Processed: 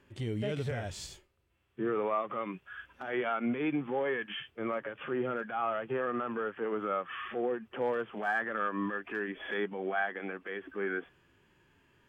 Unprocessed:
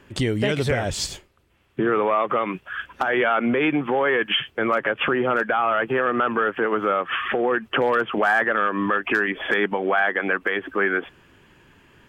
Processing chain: harmonic-percussive split percussive -15 dB; trim -9 dB

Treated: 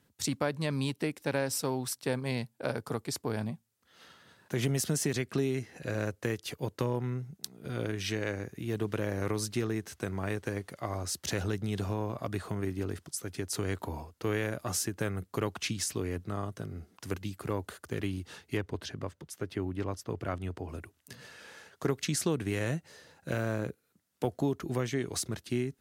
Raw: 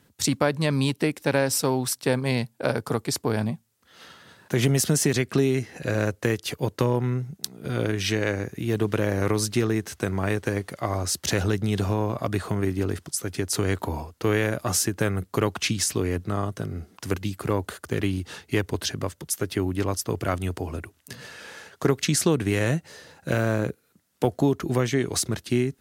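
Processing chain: 18.57–20.69 s: low-pass 2.8 kHz 6 dB/octave; trim -8.5 dB

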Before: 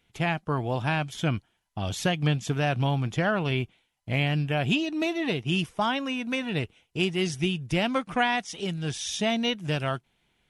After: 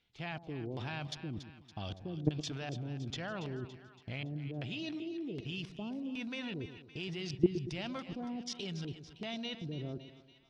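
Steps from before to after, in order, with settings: LFO low-pass square 1.3 Hz 350–4600 Hz; level held to a coarse grid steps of 19 dB; two-band feedback delay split 820 Hz, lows 116 ms, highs 282 ms, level -11.5 dB; trim -2 dB

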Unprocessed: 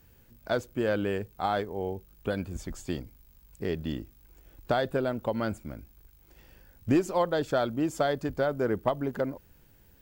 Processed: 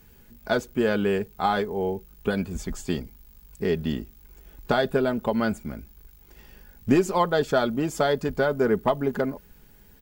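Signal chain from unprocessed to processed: band-stop 610 Hz, Q 12; comb 4.8 ms, depth 48%; trim +5 dB

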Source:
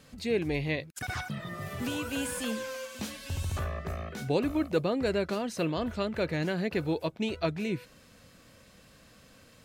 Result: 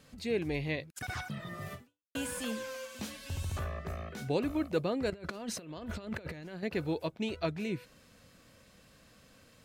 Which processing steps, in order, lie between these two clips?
1.74–2.15 s: fade out exponential; 5.10–6.63 s: compressor with a negative ratio -36 dBFS, ratio -0.5; trim -3.5 dB

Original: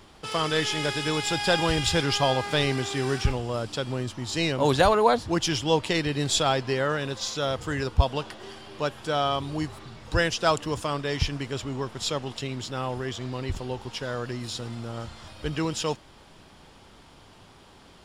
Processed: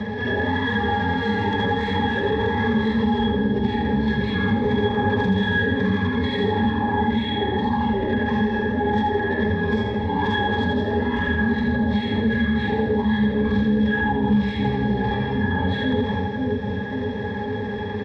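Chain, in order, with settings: phase randomisation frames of 200 ms; high-pass 410 Hz 6 dB/octave; in parallel at -1 dB: compressor with a negative ratio -38 dBFS, ratio -1; on the sum: transient shaper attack -9 dB, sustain +12 dB; sine folder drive 15 dB, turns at -7 dBFS; pitch shift -10 st; pitch-class resonator G#, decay 0.12 s; on a send: two-band feedback delay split 680 Hz, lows 539 ms, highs 82 ms, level -5.5 dB; on the sum: three bands compressed up and down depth 70%

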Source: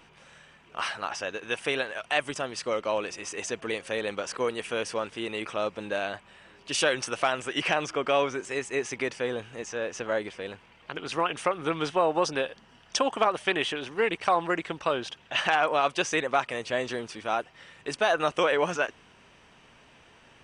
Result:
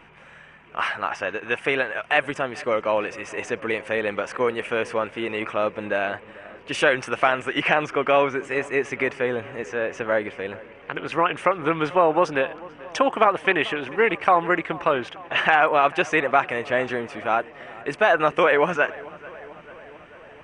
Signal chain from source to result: resonant high shelf 3.1 kHz -10.5 dB, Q 1.5; filtered feedback delay 441 ms, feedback 69%, low-pass 2.8 kHz, level -20 dB; trim +5.5 dB

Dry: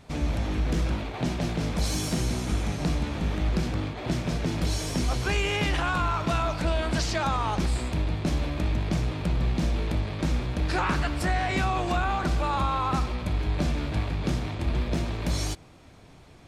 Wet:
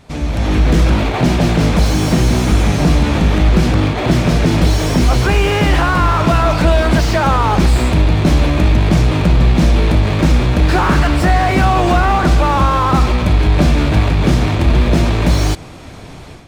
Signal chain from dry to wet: level rider gain up to 11.5 dB; in parallel at +3 dB: peak limiter -13 dBFS, peak gain reduction 8 dB; on the sum: slew-rate limiter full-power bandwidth 300 Hz; trim -1 dB

